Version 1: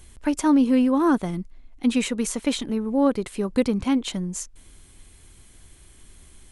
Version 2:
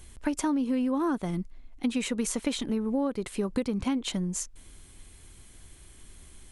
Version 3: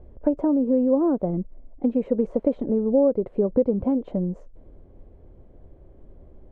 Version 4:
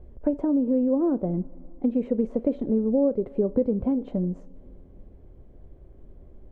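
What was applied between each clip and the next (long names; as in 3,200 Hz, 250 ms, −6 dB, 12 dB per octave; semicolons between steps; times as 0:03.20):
downward compressor 12 to 1, threshold −23 dBFS, peak gain reduction 9.5 dB; level −1 dB
low-pass with resonance 560 Hz, resonance Q 3.4; level +3.5 dB
parametric band 730 Hz −4 dB 2 octaves; coupled-rooms reverb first 0.32 s, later 2.9 s, from −18 dB, DRR 13 dB; dynamic equaliser 1,100 Hz, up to −3 dB, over −35 dBFS, Q 1.3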